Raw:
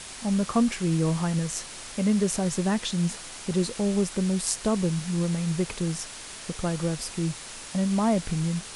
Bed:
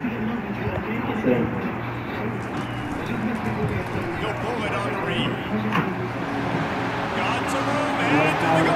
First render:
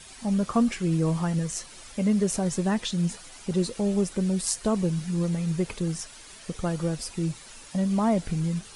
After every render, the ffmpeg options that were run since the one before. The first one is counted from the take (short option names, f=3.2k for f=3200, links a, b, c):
-af "afftdn=nr=10:nf=-41"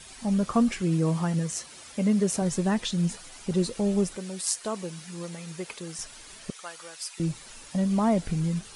-filter_complex "[0:a]asettb=1/sr,asplit=3[a][b][c];[a]atrim=end=0.814[d];[b]atrim=start=0.81:end=2.42,asetpts=PTS-STARTPTS,afade=t=in:d=0.004:c=qsin,afade=t=out:st=1.606:d=0.004:c=qsin,highpass=88[e];[c]atrim=start=2.416[f];[d][e]acrossfade=d=0.004:c1=hsin:c2=qsin[g];[g][f]acrossfade=d=0.004:c1=qsin:c2=hsin,asettb=1/sr,asplit=3[h][i][j];[h]atrim=end=4.164[k];[i]atrim=start=4.16:end=5.99,asetpts=PTS-STARTPTS,afade=t=in:d=0.004:c=qsin,afade=t=out:st=1.826:d=0.004:c=qsin,highpass=f=760:p=1[l];[j]atrim=start=5.986[m];[k][l]acrossfade=d=0.004:c1=hsin:c2=qsin[n];[n][m]acrossfade=d=0.004:c1=qsin:c2=hsin,asettb=1/sr,asplit=3[o][p][q];[o]atrim=end=6.504[r];[p]atrim=start=6.5:end=7.2,asetpts=PTS-STARTPTS,afade=t=in:d=0.004:c=qsin,afade=t=out:st=0.696:d=0.004:c=qsin,highpass=1.2k[s];[q]atrim=start=7.196[t];[r][s]acrossfade=d=0.004:c1=hsin:c2=qsin[u];[u][t]acrossfade=d=0.004:c1=qsin:c2=hsin"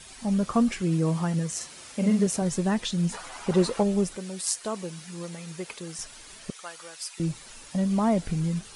-filter_complex "[0:a]asettb=1/sr,asplit=3[a][b][c];[a]atrim=end=1.564[d];[b]atrim=start=1.56:end=2.27,asetpts=PTS-STARTPTS,afade=t=in:d=0.004:c=qsin,afade=t=out:st=0.706:d=0.004:c=qsin,asplit=2[e][f];[f]adelay=46,volume=-5dB[g];[e][g]amix=inputs=2:normalize=0,atrim=end_sample=31311[h];[c]atrim=start=2.266[i];[d][h]acrossfade=d=0.004:c1=hsin:c2=qsin[j];[j][i]acrossfade=d=0.004:c1=qsin:c2=hsin,asplit=3[k][l][m];[k]afade=t=out:st=3.12:d=0.02[n];[l]equalizer=f=990:w=0.61:g=14,afade=t=in:st=3.12:d=0.02,afade=t=out:st=3.82:d=0.02[o];[m]afade=t=in:st=3.82:d=0.02[p];[n][o][p]amix=inputs=3:normalize=0"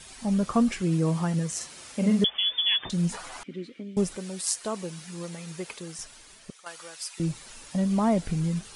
-filter_complex "[0:a]asettb=1/sr,asplit=3[a][b][c];[a]atrim=end=2.244[d];[b]atrim=start=2.24:end=2.9,asetpts=PTS-STARTPTS,afade=t=in:d=0.004:c=qsin,afade=t=out:st=0.656:d=0.004:c=qsin,lowpass=f=3.1k:t=q:w=0.5098,lowpass=f=3.1k:t=q:w=0.6013,lowpass=f=3.1k:t=q:w=0.9,lowpass=f=3.1k:t=q:w=2.563,afreqshift=-3600[e];[c]atrim=start=2.896[f];[d][e]acrossfade=d=0.004:c1=hsin:c2=qsin[g];[g][f]acrossfade=d=0.004:c1=qsin:c2=hsin,asettb=1/sr,asplit=3[h][i][j];[h]atrim=end=3.434[k];[i]atrim=start=3.43:end=3.97,asetpts=PTS-STARTPTS,afade=t=in:d=0.004:c=qsin,afade=t=out:st=0.536:d=0.004:c=qsin,asplit=3[l][m][n];[l]bandpass=f=270:t=q:w=8,volume=0dB[o];[m]bandpass=f=2.29k:t=q:w=8,volume=-6dB[p];[n]bandpass=f=3.01k:t=q:w=8,volume=-9dB[q];[o][p][q]amix=inputs=3:normalize=0[r];[j]atrim=start=3.966[s];[k][r]acrossfade=d=0.004:c1=hsin:c2=qsin[t];[t][s]acrossfade=d=0.004:c1=qsin:c2=hsin,asplit=2[u][v];[u]atrim=end=6.66,asetpts=PTS-STARTPTS,afade=t=out:st=5.66:d=1:silence=0.334965[w];[v]atrim=start=6.66,asetpts=PTS-STARTPTS,afade=t=in:d=0.004:c=hsin:silence=0.334965[x];[w][x]concat=n=2:v=0:a=1"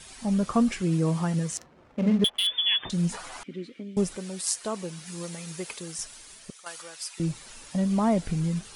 -filter_complex "[0:a]asettb=1/sr,asplit=3[a][b][c];[a]atrim=end=1.574[d];[b]atrim=start=1.57:end=2.47,asetpts=PTS-STARTPTS,afade=t=in:d=0.004:c=qsin,afade=t=out:st=0.896:d=0.004:c=qsin,adynamicsmooth=sensitivity=5.5:basefreq=590[e];[c]atrim=start=2.466[f];[d][e]acrossfade=d=0.004:c1=hsin:c2=qsin[g];[g][f]acrossfade=d=0.004:c1=qsin:c2=hsin,asettb=1/sr,asplit=3[h][i][j];[h]atrim=end=5.064[k];[i]atrim=start=5.06:end=6.82,asetpts=PTS-STARTPTS,afade=t=in:d=0.004:c=qsin,afade=t=out:st=1.756:d=0.004:c=qsin,highshelf=f=5k:g=6.5[l];[j]atrim=start=6.816[m];[k][l]acrossfade=d=0.004:c1=hsin:c2=qsin[n];[n][m]acrossfade=d=0.004:c1=qsin:c2=hsin"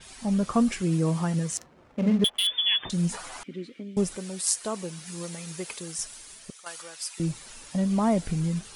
-af "adynamicequalizer=threshold=0.00794:dfrequency=6400:dqfactor=0.7:tfrequency=6400:tqfactor=0.7:attack=5:release=100:ratio=0.375:range=2:mode=boostabove:tftype=highshelf"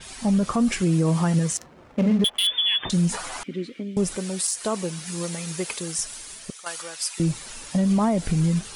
-af "acontrast=68,alimiter=limit=-14dB:level=0:latency=1:release=81"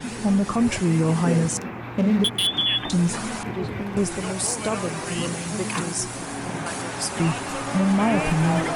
-filter_complex "[1:a]volume=-6dB[a];[0:a][a]amix=inputs=2:normalize=0"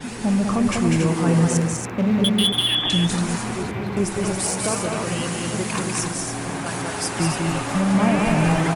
-af "aecho=1:1:197|281:0.668|0.501"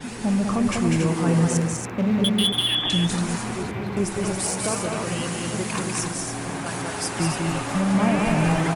-af "volume=-2dB"